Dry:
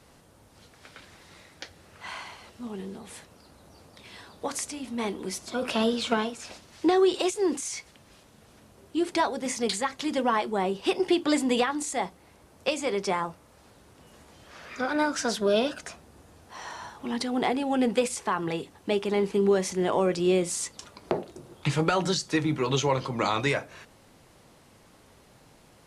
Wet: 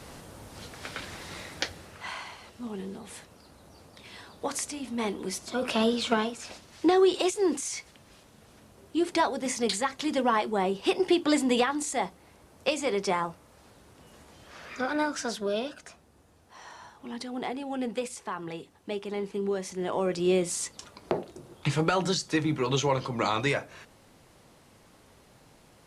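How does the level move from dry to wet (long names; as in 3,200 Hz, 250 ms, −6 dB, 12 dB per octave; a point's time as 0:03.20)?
0:01.63 +10.5 dB
0:02.15 0 dB
0:14.69 0 dB
0:15.67 −7.5 dB
0:19.64 −7.5 dB
0:20.32 −1 dB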